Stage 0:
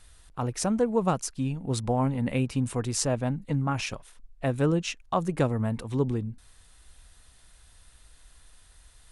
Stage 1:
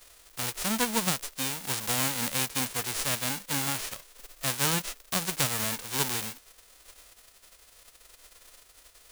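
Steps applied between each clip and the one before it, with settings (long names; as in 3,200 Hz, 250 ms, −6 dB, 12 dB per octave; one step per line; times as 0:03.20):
spectral envelope flattened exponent 0.1
level −3 dB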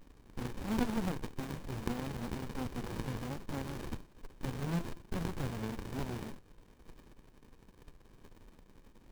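hum removal 339.1 Hz, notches 28
de-essing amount 55%
windowed peak hold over 65 samples
level +1 dB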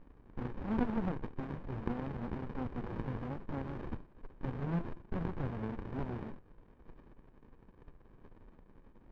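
low-pass filter 1,700 Hz 12 dB per octave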